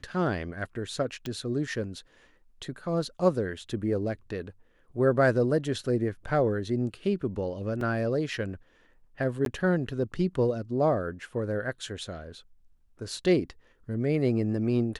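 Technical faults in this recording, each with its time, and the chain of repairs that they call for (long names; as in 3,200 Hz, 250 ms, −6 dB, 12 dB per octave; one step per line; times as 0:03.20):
0:01.26: click −21 dBFS
0:07.81: drop-out 2.7 ms
0:09.45–0:09.46: drop-out 12 ms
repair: click removal
repair the gap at 0:07.81, 2.7 ms
repair the gap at 0:09.45, 12 ms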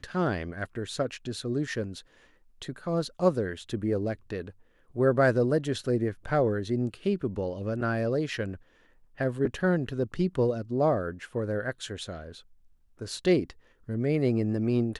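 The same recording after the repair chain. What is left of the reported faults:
none of them is left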